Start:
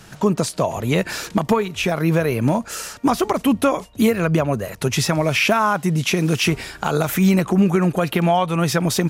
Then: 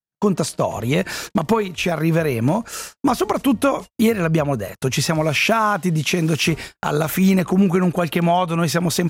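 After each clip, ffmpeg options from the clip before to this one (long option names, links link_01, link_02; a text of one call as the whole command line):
ffmpeg -i in.wav -af "agate=range=-56dB:threshold=-30dB:ratio=16:detection=peak" out.wav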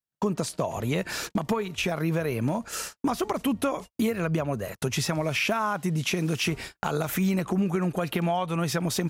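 ffmpeg -i in.wav -af "acompressor=threshold=-27dB:ratio=2,volume=-1.5dB" out.wav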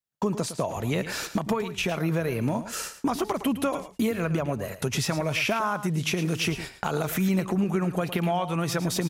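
ffmpeg -i in.wav -af "aecho=1:1:110:0.251" out.wav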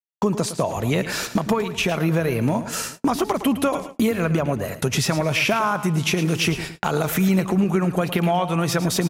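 ffmpeg -i in.wav -filter_complex "[0:a]asplit=2[link_01][link_02];[link_02]adelay=221,lowpass=frequency=4000:poles=1,volume=-19.5dB,asplit=2[link_03][link_04];[link_04]adelay=221,lowpass=frequency=4000:poles=1,volume=0.53,asplit=2[link_05][link_06];[link_06]adelay=221,lowpass=frequency=4000:poles=1,volume=0.53,asplit=2[link_07][link_08];[link_08]adelay=221,lowpass=frequency=4000:poles=1,volume=0.53[link_09];[link_01][link_03][link_05][link_07][link_09]amix=inputs=5:normalize=0,agate=range=-33dB:threshold=-40dB:ratio=16:detection=peak,volume=5.5dB" out.wav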